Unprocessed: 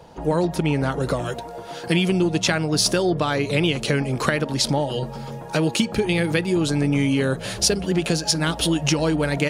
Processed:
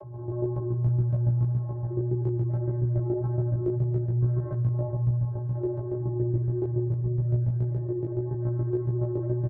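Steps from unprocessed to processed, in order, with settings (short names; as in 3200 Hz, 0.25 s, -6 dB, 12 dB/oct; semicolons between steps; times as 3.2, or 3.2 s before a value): Gaussian blur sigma 9.9 samples; limiter -16 dBFS, peak gain reduction 6 dB; vocoder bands 16, square 120 Hz; echo 96 ms -15.5 dB; spring tank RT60 3.7 s, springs 41/58 ms, chirp 80 ms, DRR -3.5 dB; chopper 7.1 Hz, depth 65%, duty 15%; chorus 1.8 Hz, delay 15.5 ms, depth 2.1 ms; fast leveller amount 50%; gain -5 dB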